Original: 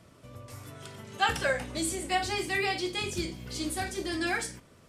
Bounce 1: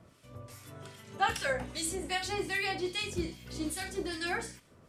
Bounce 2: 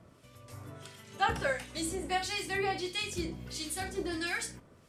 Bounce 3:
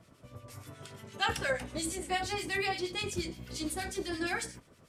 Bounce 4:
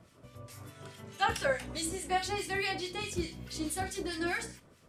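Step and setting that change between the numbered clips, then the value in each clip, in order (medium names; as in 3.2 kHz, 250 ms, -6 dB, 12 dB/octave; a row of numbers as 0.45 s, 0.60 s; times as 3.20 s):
harmonic tremolo, rate: 2.5 Hz, 1.5 Hz, 8.5 Hz, 4.7 Hz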